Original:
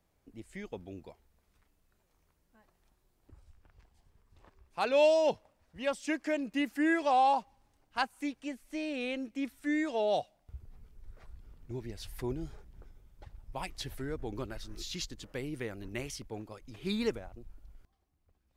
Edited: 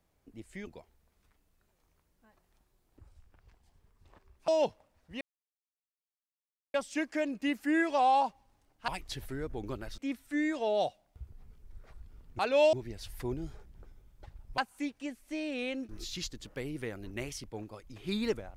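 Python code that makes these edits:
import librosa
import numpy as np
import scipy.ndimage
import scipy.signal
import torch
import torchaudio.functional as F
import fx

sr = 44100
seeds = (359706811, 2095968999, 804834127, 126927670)

y = fx.edit(x, sr, fx.cut(start_s=0.67, length_s=0.31),
    fx.move(start_s=4.79, length_s=0.34, to_s=11.72),
    fx.insert_silence(at_s=5.86, length_s=1.53),
    fx.swap(start_s=8.0, length_s=1.31, other_s=13.57, other_length_s=1.1), tone=tone)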